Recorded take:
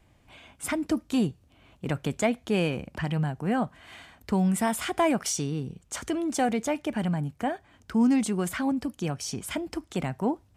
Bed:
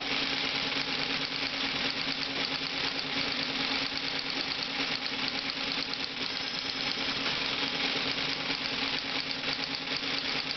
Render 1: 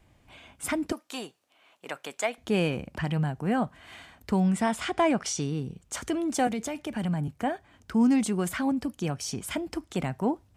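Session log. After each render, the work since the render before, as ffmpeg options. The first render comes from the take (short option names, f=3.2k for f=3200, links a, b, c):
-filter_complex "[0:a]asettb=1/sr,asplit=3[a][b][c];[a]atrim=end=0.924[d];[b]atrim=start=0.92:end=2.38,asetpts=PTS-STARTPTS,afade=t=in:d=0.004:c=qsin,afade=t=out:st=1.456:d=0.004:c=qsin,highpass=640[e];[c]atrim=start=2.376[f];[d][e]acrossfade=d=0.004:c1=hsin:c2=qsin[g];[g][f]acrossfade=d=0.004:c1=qsin:c2=hsin,asettb=1/sr,asplit=3[h][i][j];[h]atrim=end=4.404[k];[i]atrim=start=4.4:end=5.42,asetpts=PTS-STARTPTS,afade=t=in:d=0.004:c=qsin,afade=t=out:st=1.016:d=0.004:c=qsin,lowpass=6.8k[l];[j]atrim=start=5.416[m];[k][l]acrossfade=d=0.004:c1=hsin:c2=qsin[n];[n][m]acrossfade=d=0.004:c1=qsin:c2=hsin,asettb=1/sr,asplit=3[o][p][q];[o]atrim=end=6.474[r];[p]atrim=start=6.47:end=7.28,asetpts=PTS-STARTPTS,afade=t=in:d=0.004:c=qsin,afade=t=out:st=0.806:d=0.004:c=qsin,acrossover=split=190|3000[s][t][u];[t]acompressor=threshold=-30dB:ratio=6:attack=3.2:release=140:knee=2.83:detection=peak[v];[s][v][u]amix=inputs=3:normalize=0[w];[q]atrim=start=7.276[x];[r][w]acrossfade=d=0.004:c1=hsin:c2=qsin[y];[y][x]acrossfade=d=0.004:c1=qsin:c2=hsin"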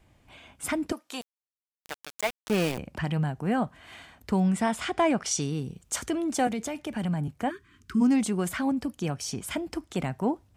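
-filter_complex "[0:a]asettb=1/sr,asplit=3[a][b][c];[a]atrim=end=1.214[d];[b]atrim=start=1.21:end=2.78,asetpts=PTS-STARTPTS,afade=t=in:d=0.004:c=qsin,afade=t=out:st=1.566:d=0.004:c=qsin,aeval=exprs='val(0)*gte(abs(val(0)),0.0398)':c=same[e];[c]atrim=start=2.776[f];[d][e]acrossfade=d=0.004:c1=hsin:c2=qsin[g];[g][f]acrossfade=d=0.004:c1=qsin:c2=hsin,asettb=1/sr,asplit=3[h][i][j];[h]atrim=end=5.314[k];[i]atrim=start=5.31:end=6.06,asetpts=PTS-STARTPTS,afade=t=in:d=0.004:c=qsin,afade=t=out:st=0.746:d=0.004:c=qsin,highshelf=f=4.4k:g=7[l];[j]atrim=start=6.056[m];[k][l]acrossfade=d=0.004:c1=hsin:c2=qsin[n];[n][m]acrossfade=d=0.004:c1=qsin:c2=hsin,asplit=3[o][p][q];[o]afade=t=out:st=7.49:d=0.02[r];[p]asuperstop=centerf=660:order=20:qfactor=1.1,afade=t=in:st=7.49:d=0.02,afade=t=out:st=8:d=0.02[s];[q]afade=t=in:st=8:d=0.02[t];[r][s][t]amix=inputs=3:normalize=0"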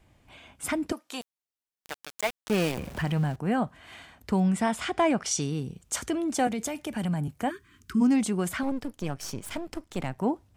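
-filter_complex "[0:a]asettb=1/sr,asplit=3[a][b][c];[a]atrim=end=2.774[d];[b]atrim=start=2.77:end=3.36,asetpts=PTS-STARTPTS,afade=t=in:d=0.004:c=qsin,afade=t=out:st=0.586:d=0.004:c=qsin,aeval=exprs='val(0)+0.5*0.0126*sgn(val(0))':c=same[e];[c]atrim=start=3.356[f];[d][e]acrossfade=d=0.004:c1=hsin:c2=qsin[g];[g][f]acrossfade=d=0.004:c1=qsin:c2=hsin,asettb=1/sr,asplit=3[h][i][j];[h]atrim=end=6.584[k];[i]atrim=start=6.58:end=7.93,asetpts=PTS-STARTPTS,afade=t=in:d=0.004:c=qsin,afade=t=out:st=1.346:d=0.004:c=qsin,highshelf=f=7.5k:g=8.5[l];[j]atrim=start=7.926[m];[k][l]acrossfade=d=0.004:c1=hsin:c2=qsin[n];[n][m]acrossfade=d=0.004:c1=qsin:c2=hsin,asettb=1/sr,asplit=3[o][p][q];[o]atrim=end=8.634[r];[p]atrim=start=8.63:end=10.18,asetpts=PTS-STARTPTS,afade=t=in:d=0.004:c=qsin,afade=t=out:st=1.546:d=0.004:c=qsin,aeval=exprs='if(lt(val(0),0),0.251*val(0),val(0))':c=same[s];[q]atrim=start=10.176[t];[r][s]acrossfade=d=0.004:c1=hsin:c2=qsin[u];[u][t]acrossfade=d=0.004:c1=qsin:c2=hsin"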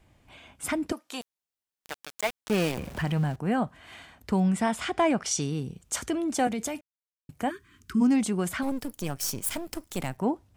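-filter_complex "[0:a]asettb=1/sr,asplit=3[a][b][c];[a]atrim=end=8.624[d];[b]atrim=start=8.62:end=10.17,asetpts=PTS-STARTPTS,afade=t=in:d=0.004:c=qsin,afade=t=out:st=1.546:d=0.004:c=qsin,aemphasis=mode=production:type=50fm[e];[c]atrim=start=10.166[f];[d][e]acrossfade=d=0.004:c1=hsin:c2=qsin[g];[g][f]acrossfade=d=0.004:c1=qsin:c2=hsin,asplit=3[h][i][j];[h]atrim=end=6.81,asetpts=PTS-STARTPTS,afade=t=out:st=6.806:d=0.004:c=hsin[k];[i]atrim=start=6.81:end=7.29,asetpts=PTS-STARTPTS,volume=0[l];[j]atrim=start=7.29,asetpts=PTS-STARTPTS,afade=t=in:d=0.004:c=hsin[m];[k][l][m]concat=n=3:v=0:a=1"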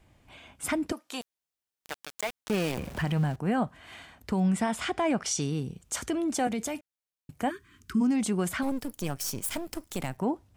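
-af "alimiter=limit=-19dB:level=0:latency=1:release=70"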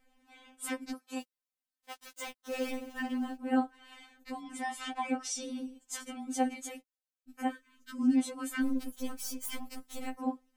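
-af "tremolo=f=94:d=0.889,afftfilt=real='re*3.46*eq(mod(b,12),0)':imag='im*3.46*eq(mod(b,12),0)':win_size=2048:overlap=0.75"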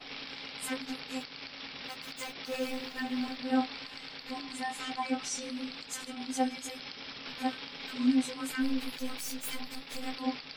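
-filter_complex "[1:a]volume=-12.5dB[a];[0:a][a]amix=inputs=2:normalize=0"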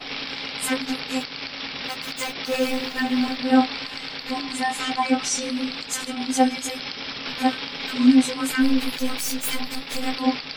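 -af "volume=11.5dB"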